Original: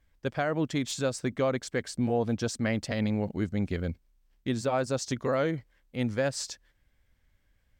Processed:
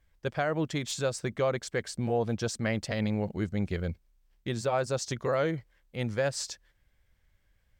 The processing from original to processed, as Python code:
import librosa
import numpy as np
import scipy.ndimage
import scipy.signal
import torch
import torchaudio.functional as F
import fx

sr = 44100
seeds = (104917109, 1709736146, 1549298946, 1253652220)

y = fx.peak_eq(x, sr, hz=260.0, db=-11.0, octaves=0.23)